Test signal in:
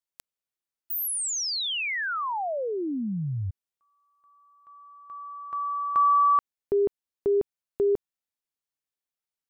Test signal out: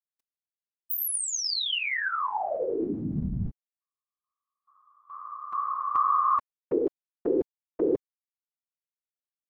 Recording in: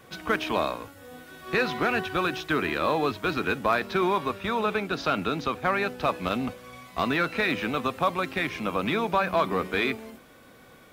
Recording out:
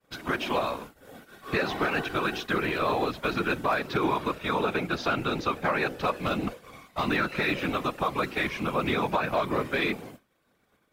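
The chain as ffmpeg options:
ffmpeg -i in.wav -af "agate=range=-33dB:threshold=-43dB:ratio=3:release=61:detection=peak,afftfilt=real='hypot(re,im)*cos(2*PI*random(0))':imag='hypot(re,im)*sin(2*PI*random(1))':win_size=512:overlap=0.75,alimiter=limit=-21.5dB:level=0:latency=1:release=144,volume=6dB" out.wav

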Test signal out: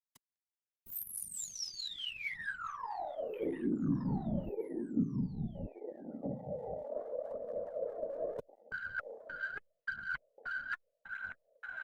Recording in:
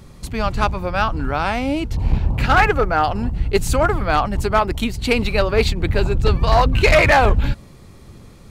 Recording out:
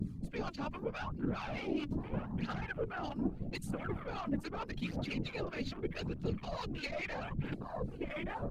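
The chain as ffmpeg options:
ffmpeg -i in.wav -filter_complex "[0:a]afftfilt=real='hypot(re,im)*cos(2*PI*random(0))':imag='hypot(re,im)*sin(2*PI*random(1))':win_size=512:overlap=0.75,asplit=2[link_01][link_02];[link_02]aecho=0:1:1175|2350|3525:0.112|0.0348|0.0108[link_03];[link_01][link_03]amix=inputs=2:normalize=0,acrossover=split=250|2000[link_04][link_05][link_06];[link_04]acompressor=threshold=-39dB:ratio=4[link_07];[link_05]acompressor=threshold=-36dB:ratio=4[link_08];[link_06]acompressor=threshold=-36dB:ratio=4[link_09];[link_07][link_08][link_09]amix=inputs=3:normalize=0,afwtdn=0.00631,equalizer=frequency=67:width=0.87:gain=-4.5,aeval=exprs='(tanh(12.6*val(0)+0.15)-tanh(0.15))/12.6':channel_layout=same,aphaser=in_gain=1:out_gain=1:delay=3.6:decay=0.53:speed=0.8:type=triangular,areverse,acompressor=threshold=-43dB:ratio=10,areverse,aresample=32000,aresample=44100,acrossover=split=890[link_10][link_11];[link_10]aeval=exprs='val(0)*(1-0.7/2+0.7/2*cos(2*PI*4.6*n/s))':channel_layout=same[link_12];[link_11]aeval=exprs='val(0)*(1-0.7/2-0.7/2*cos(2*PI*4.6*n/s))':channel_layout=same[link_13];[link_12][link_13]amix=inputs=2:normalize=0,equalizer=frequency=210:width=0.83:gain=10,volume=8dB" -ar 48000 -c:a libopus -b:a 48k out.opus

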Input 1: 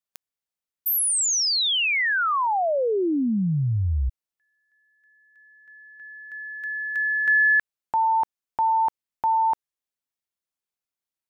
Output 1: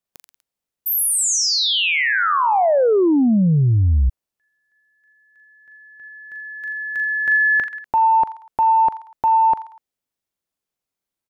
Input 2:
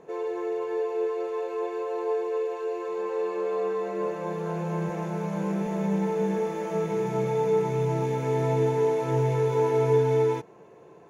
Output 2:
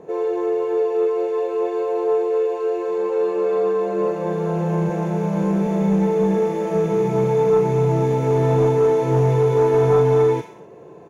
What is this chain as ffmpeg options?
ffmpeg -i in.wav -filter_complex "[0:a]acrossover=split=820[link_01][link_02];[link_01]aeval=exprs='0.224*sin(PI/2*1.58*val(0)/0.224)':channel_layout=same[link_03];[link_02]aecho=1:1:40|84|132.4|185.6|244.2:0.631|0.398|0.251|0.158|0.1[link_04];[link_03][link_04]amix=inputs=2:normalize=0,volume=1.5dB" out.wav

